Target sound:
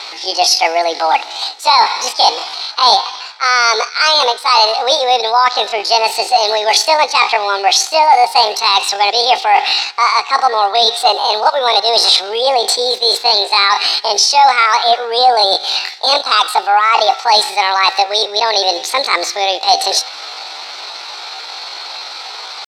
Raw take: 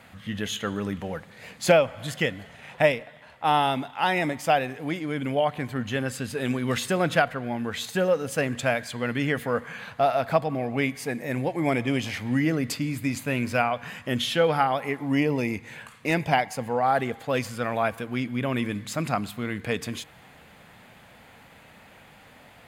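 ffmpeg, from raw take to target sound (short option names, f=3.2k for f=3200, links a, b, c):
-af "areverse,acompressor=threshold=-30dB:ratio=8,areverse,highpass=f=370:w=0.5412,highpass=f=370:w=1.3066,equalizer=f=440:t=q:w=4:g=4,equalizer=f=670:t=q:w=4:g=-6,equalizer=f=990:t=q:w=4:g=-7,equalizer=f=1.8k:t=q:w=4:g=-9,equalizer=f=2.5k:t=q:w=4:g=9,equalizer=f=4.1k:t=q:w=4:g=-8,lowpass=f=4.7k:w=0.5412,lowpass=f=4.7k:w=1.3066,asetrate=74167,aresample=44100,atempo=0.594604,apsyclip=28dB,volume=-2dB"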